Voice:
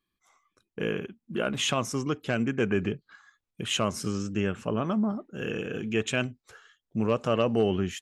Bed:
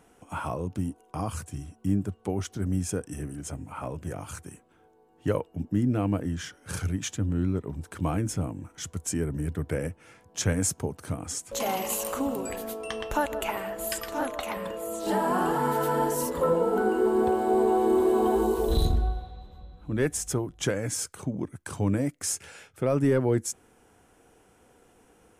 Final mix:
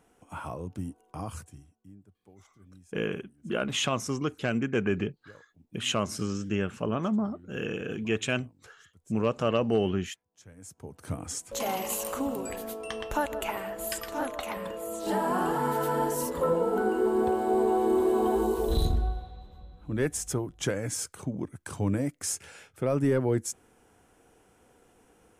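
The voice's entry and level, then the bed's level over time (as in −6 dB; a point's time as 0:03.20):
2.15 s, −1.0 dB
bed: 0:01.37 −5.5 dB
0:01.93 −26.5 dB
0:10.52 −26.5 dB
0:11.10 −2 dB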